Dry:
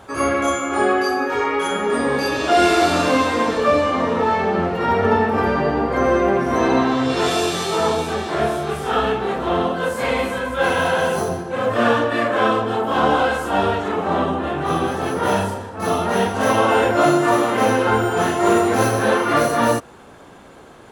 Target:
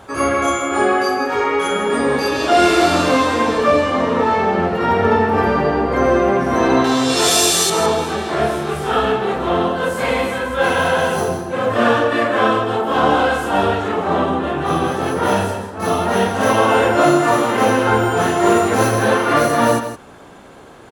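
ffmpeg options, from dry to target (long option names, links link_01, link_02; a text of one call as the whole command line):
ffmpeg -i in.wav -filter_complex "[0:a]asettb=1/sr,asplit=3[link_01][link_02][link_03];[link_01]atrim=end=6.844[link_04];[link_02]atrim=start=6.84:end=7.7,asetpts=PTS-STARTPTS,afade=type=in:duration=0.004:curve=qsin,afade=type=out:start_time=0.856:duration=0.004:curve=qsin,bass=frequency=250:gain=-4,treble=frequency=4000:gain=15[link_05];[link_03]atrim=start=7.696[link_06];[link_04][link_05]acrossfade=duration=0.004:curve1=hsin:curve2=qsin[link_07];[link_07][link_06]acrossfade=duration=0.004:curve1=qsin:curve2=hsin,aecho=1:1:161:0.299,volume=2dB" out.wav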